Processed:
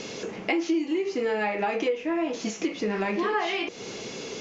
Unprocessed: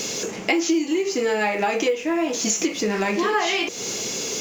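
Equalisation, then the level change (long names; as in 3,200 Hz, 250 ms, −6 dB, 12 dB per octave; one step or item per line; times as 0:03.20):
high-frequency loss of the air 130 metres
high-shelf EQ 8,100 Hz −7 dB
parametric band 14,000 Hz −5 dB 1 octave
−4.0 dB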